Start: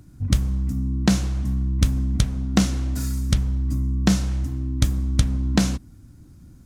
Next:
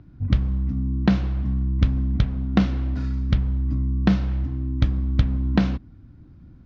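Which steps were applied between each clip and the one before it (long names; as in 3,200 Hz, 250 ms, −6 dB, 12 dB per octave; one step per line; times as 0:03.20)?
Bessel low-pass filter 2,600 Hz, order 6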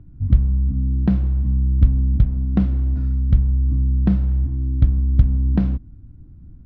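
spectral tilt −3.5 dB per octave
level −8 dB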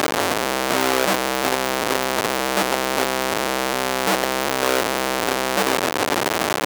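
sign of each sample alone
high-pass filter 480 Hz 12 dB per octave
level +7 dB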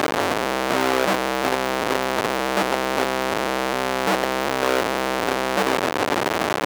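high-shelf EQ 4,500 Hz −9 dB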